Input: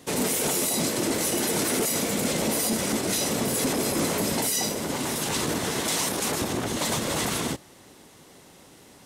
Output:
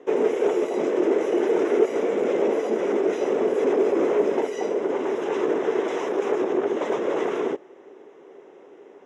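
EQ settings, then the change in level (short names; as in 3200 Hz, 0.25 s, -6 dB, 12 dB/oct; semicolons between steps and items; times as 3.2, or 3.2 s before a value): running mean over 10 samples; resonant high-pass 400 Hz, resonance Q 4.8; air absorption 81 m; 0.0 dB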